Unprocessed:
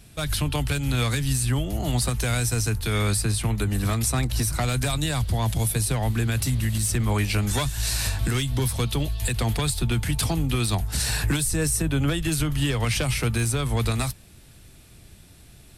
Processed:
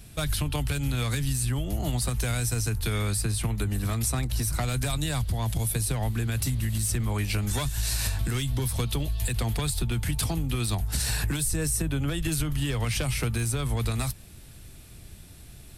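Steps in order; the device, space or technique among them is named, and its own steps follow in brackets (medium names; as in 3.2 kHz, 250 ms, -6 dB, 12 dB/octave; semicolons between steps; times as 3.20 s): ASMR close-microphone chain (bass shelf 110 Hz +4.5 dB; compression, threshold -24 dBFS, peak gain reduction 8 dB; treble shelf 12 kHz +6.5 dB)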